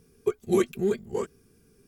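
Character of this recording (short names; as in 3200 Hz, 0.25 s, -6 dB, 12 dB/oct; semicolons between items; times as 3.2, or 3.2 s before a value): noise floor -62 dBFS; spectral tilt -5.5 dB/oct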